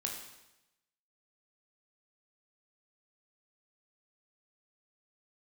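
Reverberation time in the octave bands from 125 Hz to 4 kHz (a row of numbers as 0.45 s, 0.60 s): 1.0 s, 0.95 s, 0.95 s, 0.90 s, 0.90 s, 0.90 s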